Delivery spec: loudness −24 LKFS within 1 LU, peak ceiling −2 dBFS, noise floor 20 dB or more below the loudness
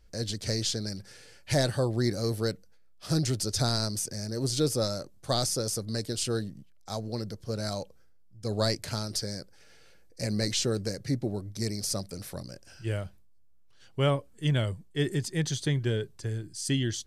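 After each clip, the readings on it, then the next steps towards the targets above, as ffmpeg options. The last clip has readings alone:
integrated loudness −30.5 LKFS; sample peak −11.0 dBFS; target loudness −24.0 LKFS
→ -af "volume=6.5dB"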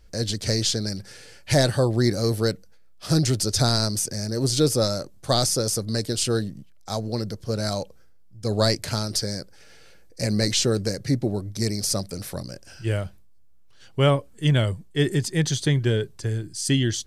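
integrated loudness −24.0 LKFS; sample peak −4.5 dBFS; background noise floor −48 dBFS

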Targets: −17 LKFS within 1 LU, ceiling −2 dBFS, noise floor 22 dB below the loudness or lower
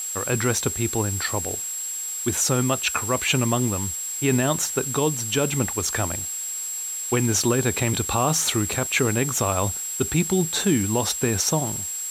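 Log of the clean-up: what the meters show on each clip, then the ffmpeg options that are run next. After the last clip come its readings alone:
interfering tone 7,600 Hz; level of the tone −28 dBFS; background noise floor −30 dBFS; target noise floor −45 dBFS; integrated loudness −22.5 LKFS; sample peak −8.5 dBFS; target loudness −17.0 LKFS
→ -af "bandreject=frequency=7600:width=30"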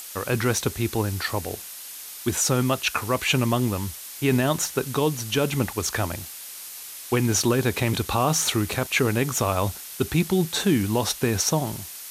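interfering tone none found; background noise floor −39 dBFS; target noise floor −46 dBFS
→ -af "afftdn=noise_reduction=7:noise_floor=-39"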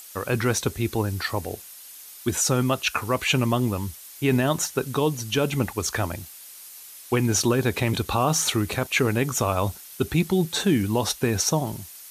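background noise floor −44 dBFS; target noise floor −46 dBFS
→ -af "afftdn=noise_reduction=6:noise_floor=-44"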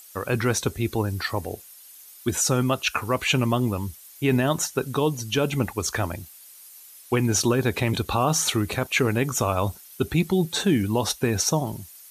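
background noise floor −47 dBFS; integrated loudness −24.0 LKFS; sample peak −9.5 dBFS; target loudness −17.0 LKFS
→ -af "volume=7dB"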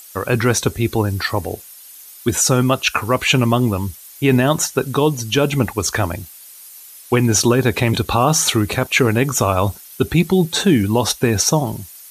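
integrated loudness −17.0 LKFS; sample peak −2.5 dBFS; background noise floor −40 dBFS

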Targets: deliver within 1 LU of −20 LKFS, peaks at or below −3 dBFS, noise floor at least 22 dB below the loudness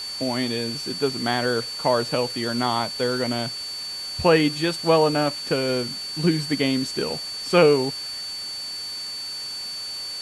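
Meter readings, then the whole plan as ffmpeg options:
interfering tone 4,500 Hz; level of the tone −30 dBFS; background noise floor −33 dBFS; target noise floor −46 dBFS; integrated loudness −23.5 LKFS; sample peak −5.0 dBFS; target loudness −20.0 LKFS
→ -af "bandreject=frequency=4500:width=30"
-af "afftdn=noise_reduction=13:noise_floor=-33"
-af "volume=3.5dB,alimiter=limit=-3dB:level=0:latency=1"

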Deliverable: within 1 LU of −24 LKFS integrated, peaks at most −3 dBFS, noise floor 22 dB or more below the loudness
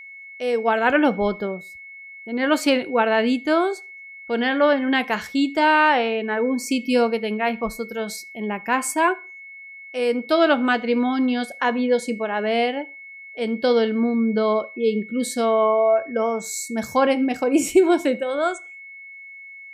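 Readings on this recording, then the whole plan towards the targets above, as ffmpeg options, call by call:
interfering tone 2,200 Hz; level of the tone −38 dBFS; integrated loudness −21.0 LKFS; sample peak −5.5 dBFS; target loudness −24.0 LKFS
→ -af "bandreject=frequency=2200:width=30"
-af "volume=-3dB"

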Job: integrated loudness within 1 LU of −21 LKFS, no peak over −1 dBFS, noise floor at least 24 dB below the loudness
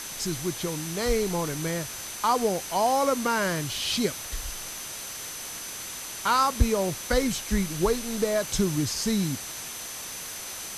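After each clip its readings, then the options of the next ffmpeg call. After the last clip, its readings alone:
interfering tone 6,100 Hz; level of the tone −41 dBFS; background noise floor −38 dBFS; target noise floor −52 dBFS; integrated loudness −27.5 LKFS; sample peak −9.0 dBFS; target loudness −21.0 LKFS
→ -af "bandreject=frequency=6100:width=30"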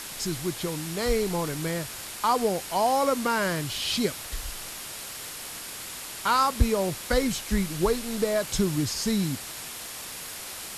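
interfering tone none found; background noise floor −39 dBFS; target noise floor −52 dBFS
→ -af "afftdn=noise_reduction=13:noise_floor=-39"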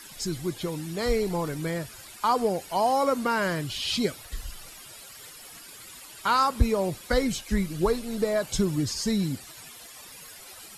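background noise floor −46 dBFS; target noise floor −51 dBFS
→ -af "afftdn=noise_reduction=6:noise_floor=-46"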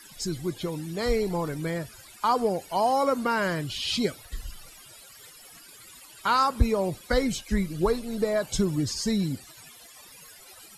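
background noise floor −50 dBFS; target noise floor −51 dBFS
→ -af "afftdn=noise_reduction=6:noise_floor=-50"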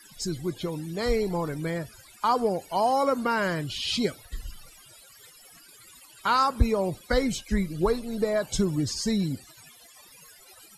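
background noise floor −53 dBFS; integrated loudness −27.0 LKFS; sample peak −9.5 dBFS; target loudness −21.0 LKFS
→ -af "volume=6dB"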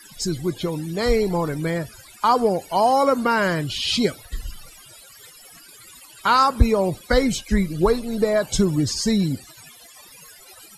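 integrated loudness −21.0 LKFS; sample peak −3.5 dBFS; background noise floor −47 dBFS

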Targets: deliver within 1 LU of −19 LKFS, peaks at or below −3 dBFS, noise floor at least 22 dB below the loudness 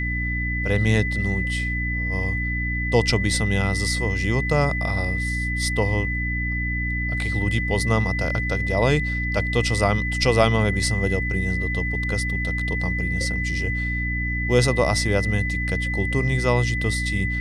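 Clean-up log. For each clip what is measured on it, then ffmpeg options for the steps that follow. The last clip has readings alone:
mains hum 60 Hz; hum harmonics up to 300 Hz; level of the hum −24 dBFS; interfering tone 2,000 Hz; level of the tone −26 dBFS; integrated loudness −22.5 LKFS; sample peak −4.0 dBFS; target loudness −19.0 LKFS
→ -af "bandreject=frequency=60:width_type=h:width=4,bandreject=frequency=120:width_type=h:width=4,bandreject=frequency=180:width_type=h:width=4,bandreject=frequency=240:width_type=h:width=4,bandreject=frequency=300:width_type=h:width=4"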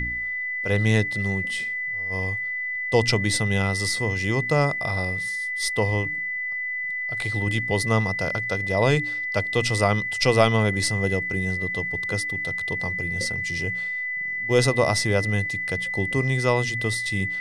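mains hum none found; interfering tone 2,000 Hz; level of the tone −26 dBFS
→ -af "bandreject=frequency=2000:width=30"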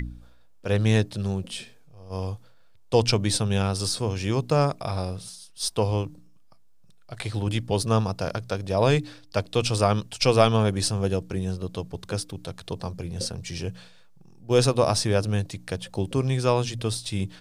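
interfering tone none found; integrated loudness −25.5 LKFS; sample peak −5.0 dBFS; target loudness −19.0 LKFS
→ -af "volume=6.5dB,alimiter=limit=-3dB:level=0:latency=1"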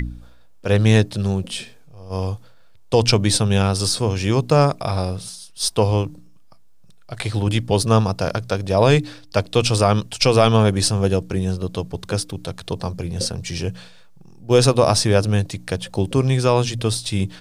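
integrated loudness −19.5 LKFS; sample peak −3.0 dBFS; background noise floor −44 dBFS

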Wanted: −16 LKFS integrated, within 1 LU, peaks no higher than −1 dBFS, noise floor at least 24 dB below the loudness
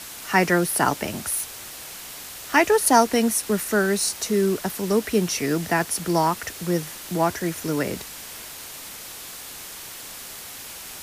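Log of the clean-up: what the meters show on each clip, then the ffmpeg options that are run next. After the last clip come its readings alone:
background noise floor −38 dBFS; target noise floor −47 dBFS; integrated loudness −22.5 LKFS; sample peak −4.0 dBFS; target loudness −16.0 LKFS
→ -af "afftdn=noise_reduction=9:noise_floor=-38"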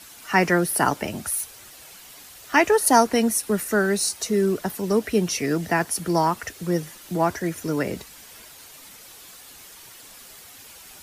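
background noise floor −46 dBFS; target noise floor −47 dBFS
→ -af "afftdn=noise_reduction=6:noise_floor=-46"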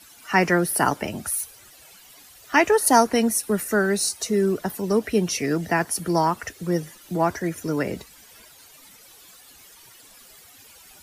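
background noise floor −50 dBFS; integrated loudness −22.5 LKFS; sample peak −4.0 dBFS; target loudness −16.0 LKFS
→ -af "volume=6.5dB,alimiter=limit=-1dB:level=0:latency=1"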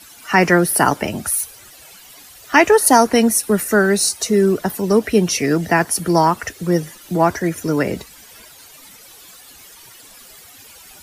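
integrated loudness −16.5 LKFS; sample peak −1.0 dBFS; background noise floor −43 dBFS

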